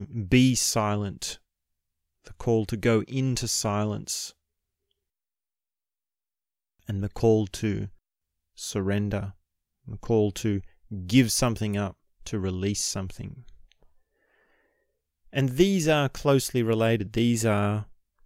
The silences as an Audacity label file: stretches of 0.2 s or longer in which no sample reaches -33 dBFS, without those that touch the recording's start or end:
1.340000	2.270000	silence
4.280000	6.890000	silence
7.860000	8.600000	silence
9.290000	9.880000	silence
10.600000	10.920000	silence
11.910000	12.260000	silence
13.310000	15.350000	silence